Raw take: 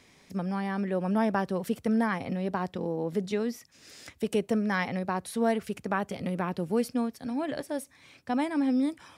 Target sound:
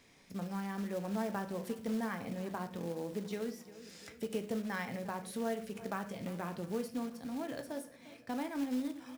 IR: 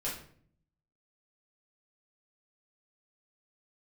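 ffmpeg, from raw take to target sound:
-filter_complex "[0:a]asplit=2[a][b];[b]adelay=350,lowpass=f=3.4k:p=1,volume=-19.5dB,asplit=2[c][d];[d]adelay=350,lowpass=f=3.4k:p=1,volume=0.55,asplit=2[e][f];[f]adelay=350,lowpass=f=3.4k:p=1,volume=0.55,asplit=2[g][h];[h]adelay=350,lowpass=f=3.4k:p=1,volume=0.55[i];[a][c][e][g][i]amix=inputs=5:normalize=0,asplit=2[j][k];[1:a]atrim=start_sample=2205,atrim=end_sample=6174[l];[k][l]afir=irnorm=-1:irlink=0,volume=-7.5dB[m];[j][m]amix=inputs=2:normalize=0,acompressor=threshold=-35dB:ratio=1.5,acrusher=bits=4:mode=log:mix=0:aa=0.000001,volume=-7.5dB"

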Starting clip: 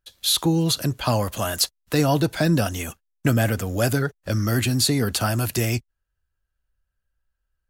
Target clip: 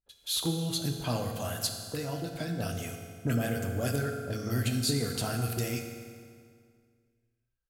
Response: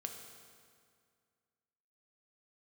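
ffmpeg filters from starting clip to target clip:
-filter_complex "[0:a]asplit=3[a][b][c];[a]afade=t=out:st=1.78:d=0.02[d];[b]acompressor=threshold=-22dB:ratio=6,afade=t=in:st=1.78:d=0.02,afade=t=out:st=2.59:d=0.02[e];[c]afade=t=in:st=2.59:d=0.02[f];[d][e][f]amix=inputs=3:normalize=0,acrossover=split=1100[g][h];[h]adelay=30[i];[g][i]amix=inputs=2:normalize=0[j];[1:a]atrim=start_sample=2205[k];[j][k]afir=irnorm=-1:irlink=0,volume=-7dB"

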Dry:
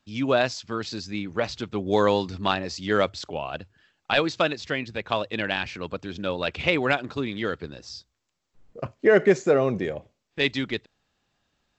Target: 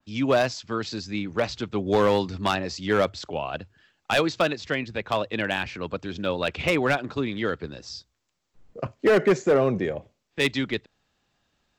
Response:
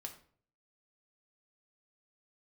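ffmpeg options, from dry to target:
-filter_complex "[0:a]acrossover=split=170[a][b];[b]asoftclip=type=hard:threshold=-16dB[c];[a][c]amix=inputs=2:normalize=0,adynamicequalizer=threshold=0.01:dfrequency=2500:dqfactor=0.7:tfrequency=2500:tqfactor=0.7:attack=5:release=100:ratio=0.375:range=2:mode=cutabove:tftype=highshelf,volume=1.5dB"

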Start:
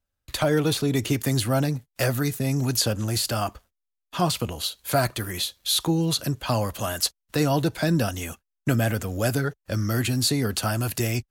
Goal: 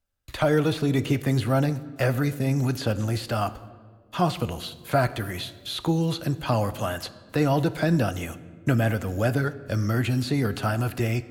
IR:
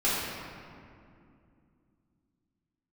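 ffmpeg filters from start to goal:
-filter_complex "[0:a]acrossover=split=3100[a][b];[b]acompressor=threshold=-42dB:ratio=4:attack=1:release=60[c];[a][c]amix=inputs=2:normalize=0,asplit=2[d][e];[1:a]atrim=start_sample=2205,asetrate=74970,aresample=44100[f];[e][f]afir=irnorm=-1:irlink=0,volume=-21.5dB[g];[d][g]amix=inputs=2:normalize=0"

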